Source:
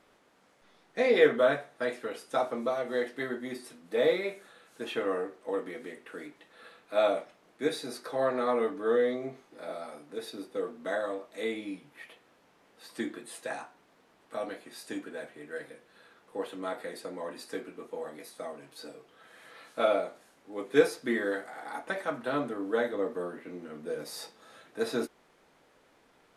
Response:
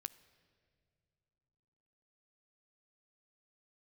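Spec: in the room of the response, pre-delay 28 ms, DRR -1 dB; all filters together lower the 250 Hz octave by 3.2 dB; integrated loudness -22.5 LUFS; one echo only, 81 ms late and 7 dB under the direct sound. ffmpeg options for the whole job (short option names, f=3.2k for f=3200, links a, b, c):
-filter_complex "[0:a]equalizer=f=250:t=o:g=-4,aecho=1:1:81:0.447,asplit=2[a][b];[1:a]atrim=start_sample=2205,adelay=28[c];[b][c]afir=irnorm=-1:irlink=0,volume=4.5dB[d];[a][d]amix=inputs=2:normalize=0,volume=7dB"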